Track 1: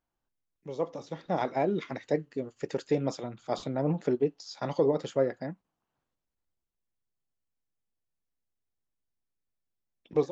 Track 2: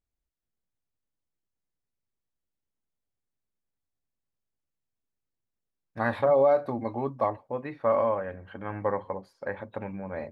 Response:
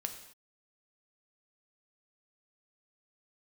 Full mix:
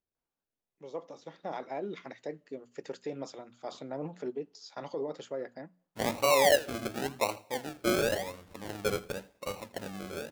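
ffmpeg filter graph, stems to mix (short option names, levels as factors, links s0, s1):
-filter_complex "[0:a]lowshelf=f=150:g=-8.5,alimiter=limit=0.0891:level=0:latency=1:release=40,adelay=150,volume=0.501,asplit=2[s0][s1];[s1]volume=0.0794[s2];[1:a]acrusher=samples=37:mix=1:aa=0.000001:lfo=1:lforange=22.2:lforate=0.92,volume=0.631,asplit=3[s3][s4][s5];[s4]volume=0.178[s6];[s5]volume=0.112[s7];[2:a]atrim=start_sample=2205[s8];[s2][s6]amix=inputs=2:normalize=0[s9];[s9][s8]afir=irnorm=-1:irlink=0[s10];[s7]aecho=0:1:82:1[s11];[s0][s3][s10][s11]amix=inputs=4:normalize=0,lowshelf=f=93:g=-12,bandreject=f=60:t=h:w=6,bandreject=f=120:t=h:w=6,bandreject=f=180:t=h:w=6,bandreject=f=240:t=h:w=6"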